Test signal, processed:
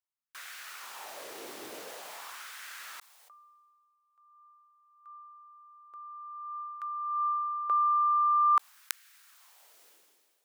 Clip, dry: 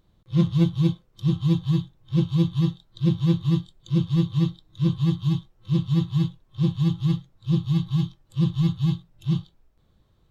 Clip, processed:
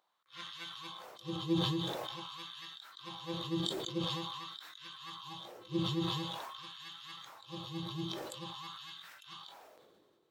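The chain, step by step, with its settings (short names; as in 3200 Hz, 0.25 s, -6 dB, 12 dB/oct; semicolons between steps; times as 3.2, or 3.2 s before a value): LFO high-pass sine 0.47 Hz 370–1600 Hz; sustainer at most 29 dB/s; gain -8 dB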